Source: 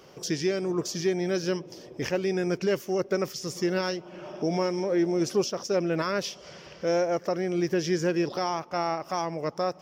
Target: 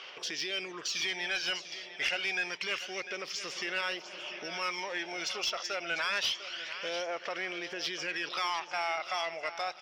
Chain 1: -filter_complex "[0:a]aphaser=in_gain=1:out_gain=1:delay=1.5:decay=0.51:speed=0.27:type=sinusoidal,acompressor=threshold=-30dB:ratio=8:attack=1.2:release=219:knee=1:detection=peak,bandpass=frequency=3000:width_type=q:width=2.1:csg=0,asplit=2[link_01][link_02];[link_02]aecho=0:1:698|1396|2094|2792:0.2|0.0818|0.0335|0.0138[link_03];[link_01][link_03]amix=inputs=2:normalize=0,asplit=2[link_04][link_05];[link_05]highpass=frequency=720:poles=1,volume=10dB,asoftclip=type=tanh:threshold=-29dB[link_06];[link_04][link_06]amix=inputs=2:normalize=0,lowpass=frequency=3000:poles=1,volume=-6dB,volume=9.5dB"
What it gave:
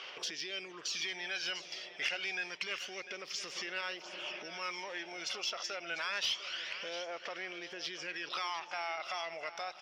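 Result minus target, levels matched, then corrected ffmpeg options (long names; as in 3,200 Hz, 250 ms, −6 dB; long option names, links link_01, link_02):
downward compressor: peak gain reduction +6.5 dB
-filter_complex "[0:a]aphaser=in_gain=1:out_gain=1:delay=1.5:decay=0.51:speed=0.27:type=sinusoidal,acompressor=threshold=-22.5dB:ratio=8:attack=1.2:release=219:knee=1:detection=peak,bandpass=frequency=3000:width_type=q:width=2.1:csg=0,asplit=2[link_01][link_02];[link_02]aecho=0:1:698|1396|2094|2792:0.2|0.0818|0.0335|0.0138[link_03];[link_01][link_03]amix=inputs=2:normalize=0,asplit=2[link_04][link_05];[link_05]highpass=frequency=720:poles=1,volume=10dB,asoftclip=type=tanh:threshold=-29dB[link_06];[link_04][link_06]amix=inputs=2:normalize=0,lowpass=frequency=3000:poles=1,volume=-6dB,volume=9.5dB"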